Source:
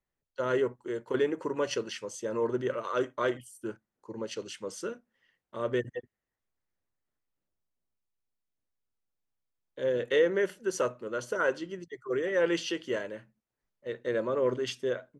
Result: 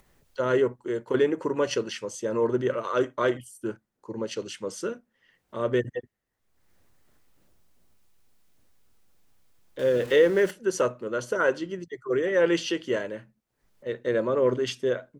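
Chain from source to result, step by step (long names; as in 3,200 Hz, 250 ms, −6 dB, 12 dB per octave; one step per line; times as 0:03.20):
0:09.79–0:10.51: converter with a step at zero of −40.5 dBFS
low-shelf EQ 440 Hz +3 dB
upward compression, threshold −49 dBFS
level +3.5 dB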